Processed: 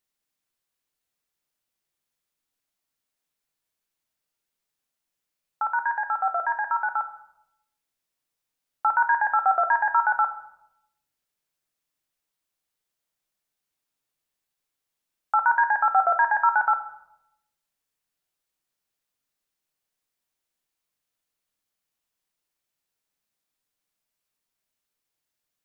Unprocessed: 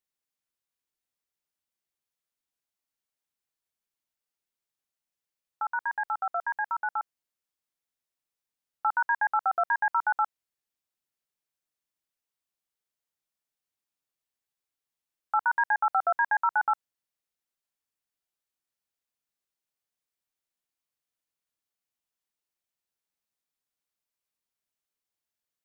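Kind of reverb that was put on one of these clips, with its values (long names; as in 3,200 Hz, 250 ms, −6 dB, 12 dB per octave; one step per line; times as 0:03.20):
rectangular room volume 250 cubic metres, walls mixed, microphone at 0.49 metres
level +5 dB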